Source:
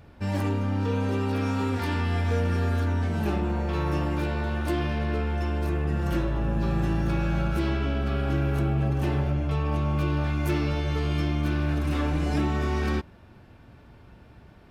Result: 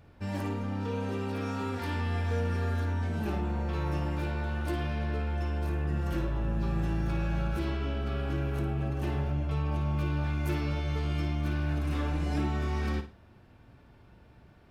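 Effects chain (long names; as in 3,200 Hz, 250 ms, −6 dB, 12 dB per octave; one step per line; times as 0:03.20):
flutter between parallel walls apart 9.5 metres, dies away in 0.33 s
level −6 dB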